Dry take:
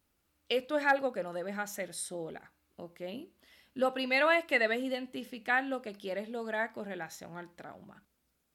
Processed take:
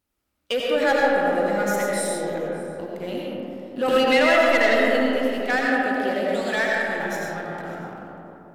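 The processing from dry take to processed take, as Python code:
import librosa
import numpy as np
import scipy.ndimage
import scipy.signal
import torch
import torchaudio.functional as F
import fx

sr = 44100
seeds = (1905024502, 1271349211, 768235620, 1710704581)

p1 = fx.weighting(x, sr, curve='ITU-R 468', at=(6.28, 6.89))
p2 = fx.leveller(p1, sr, passes=2)
p3 = p2 + fx.echo_single(p2, sr, ms=592, db=-22.5, dry=0)
p4 = fx.rev_freeverb(p3, sr, rt60_s=3.2, hf_ratio=0.3, predelay_ms=50, drr_db=-4.0)
y = fx.band_squash(p4, sr, depth_pct=70, at=(3.88, 4.49))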